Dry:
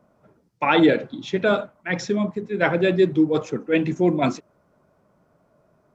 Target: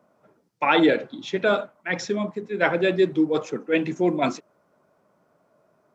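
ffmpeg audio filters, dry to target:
-af "highpass=f=130:p=1,lowshelf=f=170:g=-8.5"

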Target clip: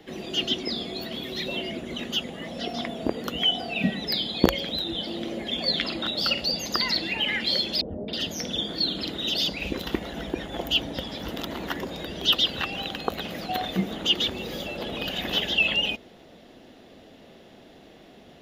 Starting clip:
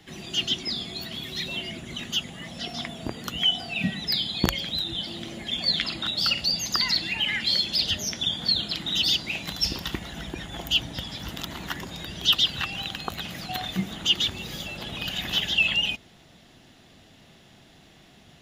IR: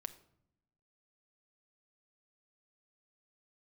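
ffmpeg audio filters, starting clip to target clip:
-filter_complex "[0:a]equalizer=f=125:t=o:w=1:g=-6,equalizer=f=250:t=o:w=1:g=5,equalizer=f=500:t=o:w=1:g=11,equalizer=f=8k:t=o:w=1:g=-7,asettb=1/sr,asplit=3[a][b][c];[a]atrim=end=7.814[d];[b]atrim=start=7.81:end=9.87,asetpts=PTS-STARTPTS,afade=t=in:d=0.004:c=qsin,afade=t=out:st=2.056:d=0.004:c=qsin,acrossover=split=810|2600[e][f][g];[f]adelay=270[h];[g]adelay=320[i];[e][h][i]amix=inputs=3:normalize=0,atrim=end_sample=90846[j];[c]atrim=start=9.866[k];[d][j]acrossfade=d=0.004:c1=hsin:c2=qsin[l];[l][k]acrossfade=d=0.004:c1=qsin:c2=hsin"

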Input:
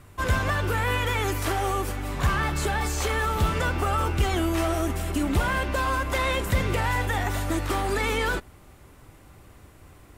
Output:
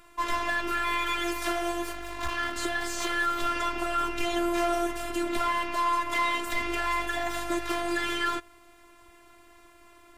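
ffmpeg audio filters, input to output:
-filter_complex "[0:a]asettb=1/sr,asplit=3[a][b][c];[a]atrim=end=1.934[d];[b]atrim=start=1.93:end=2.56,asetpts=PTS-STARTPTS,afade=t=in:d=0.004:c=qsin,afade=t=out:st=0.626:d=0.004:c=qsin,aeval=exprs='clip(val(0),-1,0.02)':c=same[e];[c]atrim=start=2.556[f];[d][e]acrossfade=d=0.004:c1=hsin:c2=qsin[g];[g][f]acrossfade=d=0.004:c1=qsin:c2=hsin,asplit=2[h][i];[i]highpass=f=720:p=1,volume=9dB,asoftclip=type=tanh:threshold=-14dB[j];[h][j]amix=inputs=2:normalize=0,lowpass=f=4.9k:p=1,volume=-6dB,afftfilt=real='hypot(re,im)*cos(PI*b)':imag='0':win_size=512:overlap=0.75"

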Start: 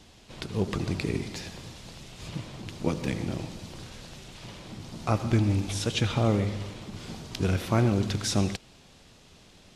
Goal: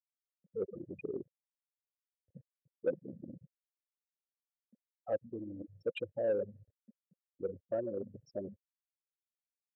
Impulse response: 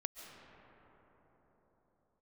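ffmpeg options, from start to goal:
-filter_complex "[0:a]afftfilt=real='re*gte(hypot(re,im),0.158)':imag='im*gte(hypot(re,im),0.158)':win_size=1024:overlap=0.75,areverse,acompressor=threshold=-31dB:ratio=8,areverse,asplit=3[a][b][c];[a]bandpass=f=530:t=q:w=8,volume=0dB[d];[b]bandpass=f=1.84k:t=q:w=8,volume=-6dB[e];[c]bandpass=f=2.48k:t=q:w=8,volume=-9dB[f];[d][e][f]amix=inputs=3:normalize=0,asplit=2[g][h];[h]highpass=f=720:p=1,volume=12dB,asoftclip=type=tanh:threshold=-36dB[i];[g][i]amix=inputs=2:normalize=0,lowpass=f=1.5k:p=1,volume=-6dB,volume=13.5dB"

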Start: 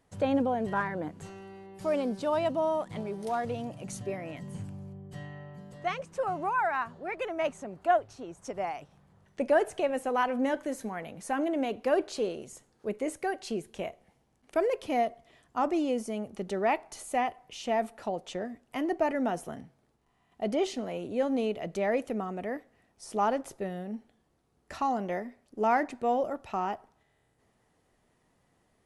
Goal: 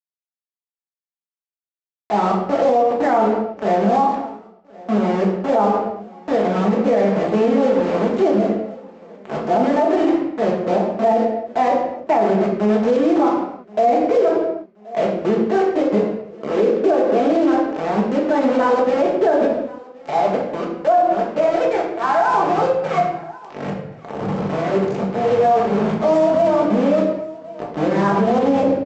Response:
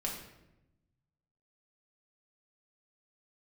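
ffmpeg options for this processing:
-filter_complex "[0:a]areverse,aemphasis=mode=reproduction:type=75kf,aecho=1:1:6:0.31,adynamicequalizer=threshold=0.00891:dfrequency=620:dqfactor=1:tfrequency=620:tqfactor=1:attack=5:release=100:ratio=0.375:range=2:mode=cutabove:tftype=bell,aresample=16000,acrusher=bits=5:mix=0:aa=0.000001,aresample=44100,bandpass=f=490:t=q:w=0.74:csg=0,aecho=1:1:1077|2154|3231:0.0631|0.0259|0.0106[a];[1:a]atrim=start_sample=2205,afade=t=out:st=0.41:d=0.01,atrim=end_sample=18522[b];[a][b]afir=irnorm=-1:irlink=0,alimiter=level_in=23.5dB:limit=-1dB:release=50:level=0:latency=1,volume=-7dB"

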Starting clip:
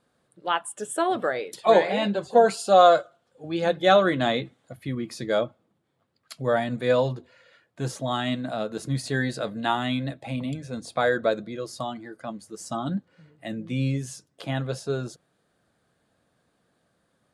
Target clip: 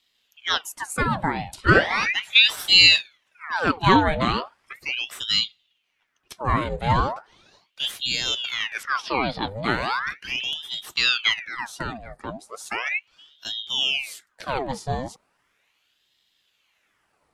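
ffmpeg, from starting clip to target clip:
-filter_complex "[0:a]asettb=1/sr,asplit=3[a][b][c];[a]atrim=end=8.834[d];[b]atrim=start=8.83:end=9.48,asetpts=PTS-STARTPTS,afade=t=in:d=0.004:c=qsin,afade=t=out:st=0.646:d=0.004:c=qsin,highshelf=f=5.3k:t=q:w=3:g=-13.5[e];[c]atrim=start=9.476[f];[d][e]acrossfade=d=0.004:c1=hsin:c2=qsin[g];[g][f]acrossfade=d=0.004:c1=qsin:c2=hsin,aeval=exprs='val(0)*sin(2*PI*1900*n/s+1900*0.85/0.37*sin(2*PI*0.37*n/s))':c=same,volume=4dB"

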